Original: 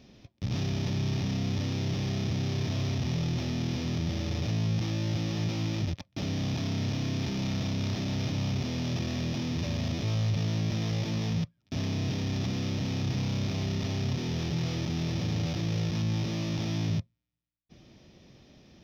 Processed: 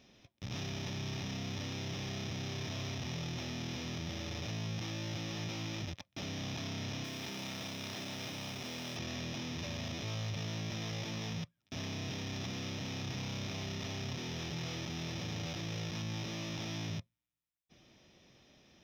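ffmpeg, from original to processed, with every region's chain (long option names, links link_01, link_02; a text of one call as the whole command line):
ffmpeg -i in.wav -filter_complex "[0:a]asettb=1/sr,asplit=3[link_01][link_02][link_03];[link_01]atrim=end=7.044[link_04];[link_02]atrim=start=7.04:end=8.97,asetpts=PTS-STARTPTS,afade=type=in:duration=0.004:curve=qsin,afade=type=out:start_time=1.926:duration=0.004:curve=qsin,highpass=frequency=220:poles=1,acrusher=bits=7:mix=0:aa=0.5[link_05];[link_03]atrim=start=8.966[link_06];[link_04][link_05]acrossfade=duration=0.004:curve1=hsin:curve2=qsin[link_07];[link_07][link_06]acrossfade=duration=0.004:curve1=qsin:curve2=hsin,lowshelf=frequency=470:gain=-10,bandreject=frequency=4500:width=6.8,volume=-2dB" out.wav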